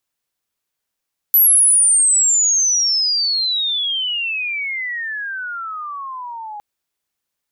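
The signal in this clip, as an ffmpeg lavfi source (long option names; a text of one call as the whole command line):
ffmpeg -f lavfi -i "aevalsrc='pow(10,(-8-20*t/5.26)/20)*sin(2*PI*12000*5.26/log(820/12000)*(exp(log(820/12000)*t/5.26)-1))':duration=5.26:sample_rate=44100" out.wav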